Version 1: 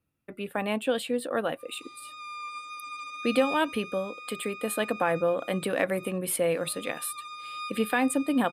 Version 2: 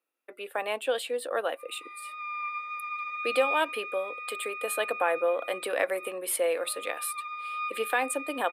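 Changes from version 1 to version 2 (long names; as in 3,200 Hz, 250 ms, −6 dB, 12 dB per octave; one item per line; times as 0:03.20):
background: add low-pass with resonance 2,000 Hz, resonance Q 6.2
master: add high-pass filter 400 Hz 24 dB per octave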